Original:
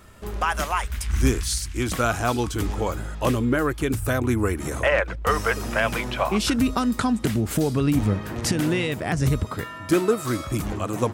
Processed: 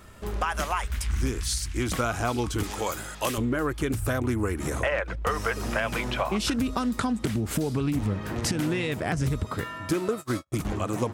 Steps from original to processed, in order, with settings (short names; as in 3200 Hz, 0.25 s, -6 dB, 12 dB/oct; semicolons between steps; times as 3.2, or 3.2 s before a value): 2.63–3.38 tilt +3 dB/oct; 10.08–10.65 gate -25 dBFS, range -51 dB; compressor 5:1, threshold -23 dBFS, peak gain reduction 9 dB; Doppler distortion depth 0.17 ms